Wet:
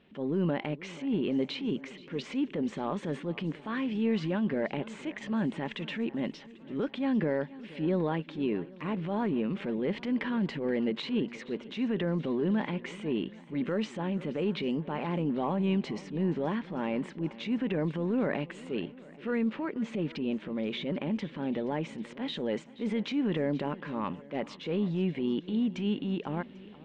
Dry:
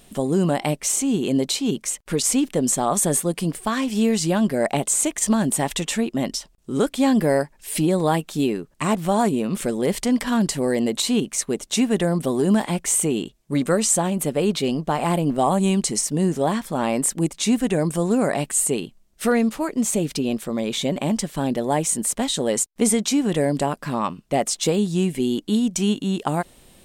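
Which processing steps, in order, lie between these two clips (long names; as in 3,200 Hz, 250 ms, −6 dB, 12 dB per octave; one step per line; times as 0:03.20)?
loudspeaker in its box 100–2,900 Hz, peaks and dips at 120 Hz −7 dB, 710 Hz −9 dB, 1,200 Hz −4 dB
brickwall limiter −13.5 dBFS, peak gain reduction 5 dB
transient designer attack −7 dB, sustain +4 dB
feedback echo with a long and a short gap by turns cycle 793 ms, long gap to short 1.5 to 1, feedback 43%, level −19 dB
level −6.5 dB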